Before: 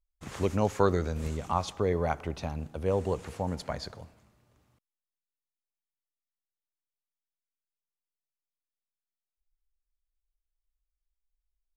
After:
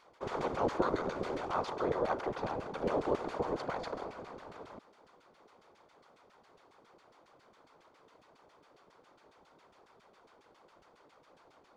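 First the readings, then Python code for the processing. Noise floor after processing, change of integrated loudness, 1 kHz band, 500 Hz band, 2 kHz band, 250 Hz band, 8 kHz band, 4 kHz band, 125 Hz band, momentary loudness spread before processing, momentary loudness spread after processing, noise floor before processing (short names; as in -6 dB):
-65 dBFS, -5.0 dB, -1.5 dB, -3.5 dB, -0.5 dB, -4.5 dB, under -10 dB, -5.0 dB, -13.5 dB, 11 LU, 16 LU, under -85 dBFS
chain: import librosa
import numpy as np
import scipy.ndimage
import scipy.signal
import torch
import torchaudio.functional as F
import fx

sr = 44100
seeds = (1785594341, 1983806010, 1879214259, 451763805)

y = fx.bin_compress(x, sr, power=0.4)
y = fx.filter_lfo_bandpass(y, sr, shape='saw_down', hz=7.3, low_hz=290.0, high_hz=2600.0, q=0.79)
y = fx.whisperise(y, sr, seeds[0])
y = y * 10.0 ** (-5.5 / 20.0)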